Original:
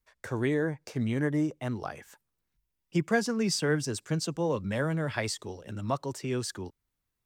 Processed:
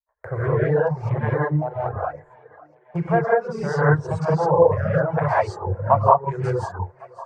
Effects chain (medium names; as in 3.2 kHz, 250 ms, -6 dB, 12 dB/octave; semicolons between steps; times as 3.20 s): local Wiener filter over 15 samples; in parallel at +1 dB: compression, threshold -35 dBFS, peak gain reduction 14 dB; on the sum: gate -55 dBFS, range -32 dB; FFT filter 160 Hz 0 dB, 250 Hz -30 dB, 370 Hz -7 dB, 610 Hz +6 dB, 890 Hz +12 dB, 3.7 kHz -21 dB; gated-style reverb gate 230 ms rising, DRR -8 dB; low-pass that closes with the level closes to 2.3 kHz, closed at -11.5 dBFS; rotary cabinet horn 0.65 Hz, later 6.3 Hz, at 5.34 s; thinning echo 551 ms, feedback 60%, high-pass 270 Hz, level -17 dB; reverb removal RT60 1.5 s; trim +4.5 dB